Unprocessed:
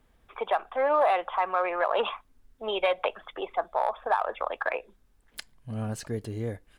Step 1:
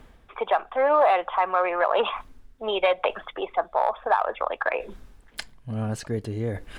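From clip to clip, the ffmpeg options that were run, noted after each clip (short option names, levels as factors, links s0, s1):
-af "highshelf=f=7800:g=-9,areverse,acompressor=mode=upward:threshold=0.0282:ratio=2.5,areverse,volume=1.58"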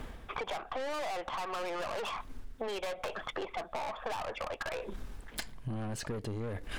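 -af "aeval=exprs='(tanh(35.5*val(0)+0.4)-tanh(0.4))/35.5':c=same,acompressor=threshold=0.00794:ratio=12,volume=2.51"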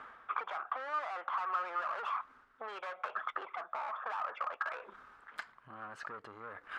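-af "bandpass=f=1300:t=q:w=4.5:csg=0,volume=2.82"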